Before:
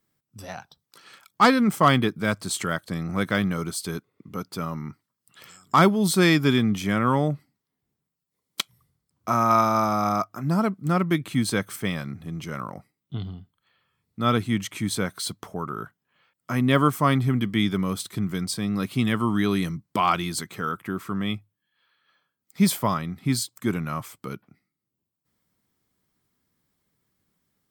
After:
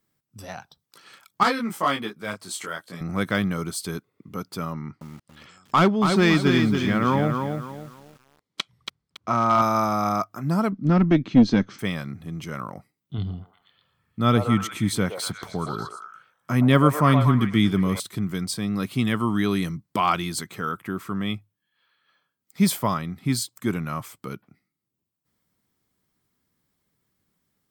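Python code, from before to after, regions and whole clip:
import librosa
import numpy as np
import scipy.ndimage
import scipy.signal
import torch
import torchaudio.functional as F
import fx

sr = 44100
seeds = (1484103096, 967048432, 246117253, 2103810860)

y = fx.chain(x, sr, fx.highpass(hz=400.0, slope=6),
    fx.detune_double(cents=19), at=(1.43, 3.01))
y = fx.chain(y, sr, fx.lowpass(hz=4800.0, slope=12),
    fx.clip_hard(threshold_db=-11.0),
    fx.echo_crushed(ms=280, feedback_pct=35, bits=8, wet_db=-5.5), at=(4.73, 9.62))
y = fx.chain(y, sr, fx.steep_lowpass(hz=6100.0, slope=48),
    fx.peak_eq(hz=240.0, db=13.5, octaves=1.1),
    fx.tube_stage(drive_db=7.0, bias=0.45), at=(10.72, 11.79))
y = fx.chain(y, sr, fx.low_shelf(hz=260.0, db=6.0),
    fx.echo_stepped(ms=118, hz=670.0, octaves=0.7, feedback_pct=70, wet_db=-2.5), at=(13.18, 18.0))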